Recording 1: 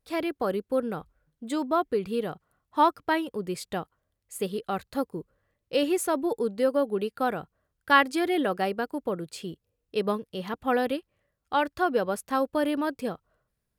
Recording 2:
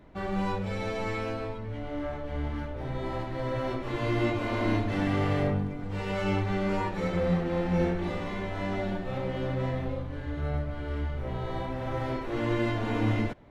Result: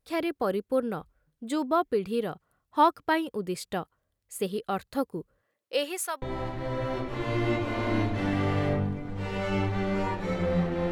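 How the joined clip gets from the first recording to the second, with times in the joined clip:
recording 1
5.41–6.22 HPF 210 Hz -> 1400 Hz
6.22 switch to recording 2 from 2.96 s

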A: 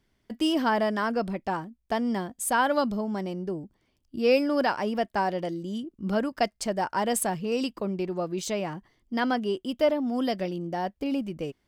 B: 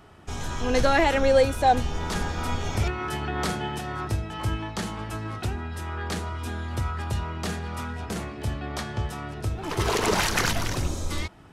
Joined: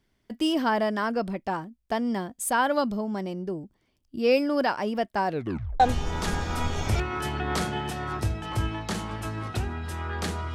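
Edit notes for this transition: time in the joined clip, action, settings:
A
5.27 tape stop 0.53 s
5.8 switch to B from 1.68 s

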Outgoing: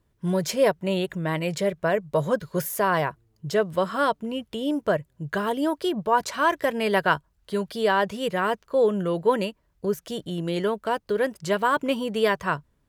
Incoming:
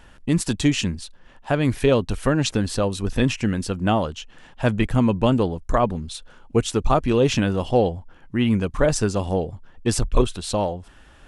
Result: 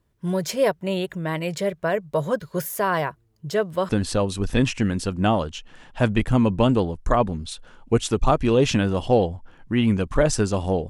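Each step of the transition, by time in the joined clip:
outgoing
3.89 switch to incoming from 2.52 s

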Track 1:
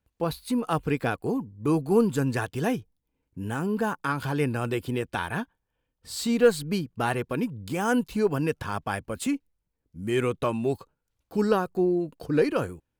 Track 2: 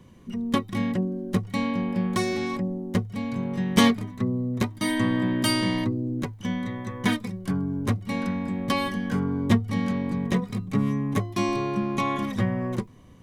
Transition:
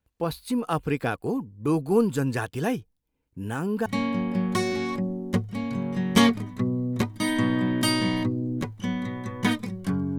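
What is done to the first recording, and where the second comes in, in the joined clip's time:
track 1
3.86 switch to track 2 from 1.47 s

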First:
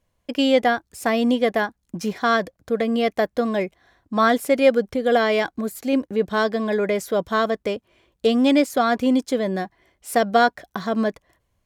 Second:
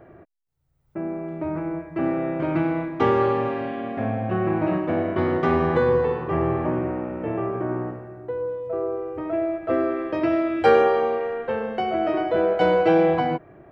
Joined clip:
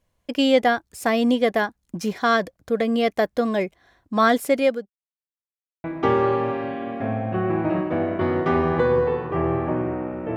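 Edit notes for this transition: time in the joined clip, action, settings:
first
4.36–4.9 fade out equal-power
4.9–5.84 mute
5.84 switch to second from 2.81 s

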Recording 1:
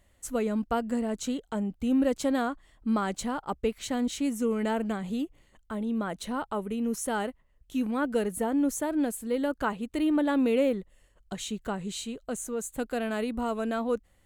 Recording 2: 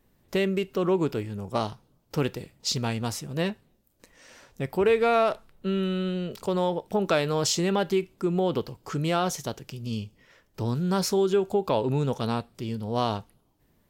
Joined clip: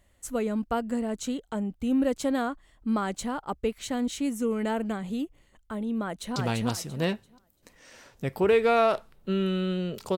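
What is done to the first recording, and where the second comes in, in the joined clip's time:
recording 1
6.02–6.36 echo throw 0.34 s, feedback 25%, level -1.5 dB
6.36 switch to recording 2 from 2.73 s

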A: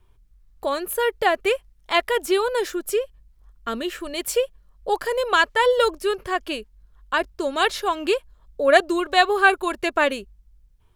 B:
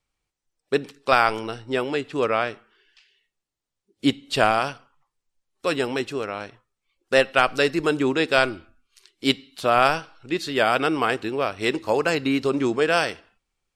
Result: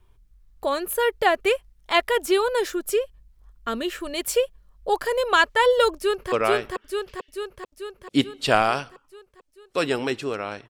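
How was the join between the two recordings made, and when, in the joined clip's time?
A
5.96–6.32 echo throw 0.44 s, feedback 65%, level -1 dB
6.32 switch to B from 2.21 s

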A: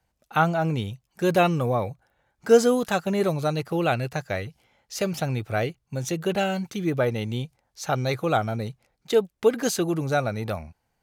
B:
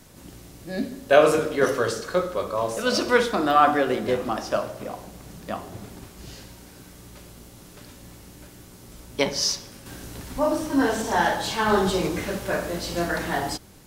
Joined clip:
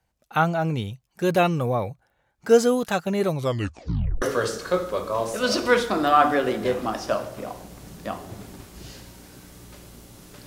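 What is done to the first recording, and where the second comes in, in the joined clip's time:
A
3.35 tape stop 0.87 s
4.22 switch to B from 1.65 s

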